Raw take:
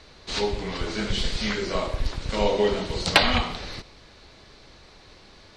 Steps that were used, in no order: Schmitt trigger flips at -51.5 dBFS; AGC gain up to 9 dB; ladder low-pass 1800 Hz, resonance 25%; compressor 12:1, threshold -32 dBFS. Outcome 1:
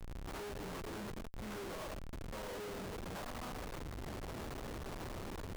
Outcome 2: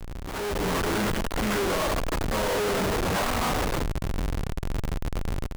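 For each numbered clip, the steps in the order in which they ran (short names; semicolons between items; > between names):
AGC > compressor > ladder low-pass > Schmitt trigger; ladder low-pass > Schmitt trigger > compressor > AGC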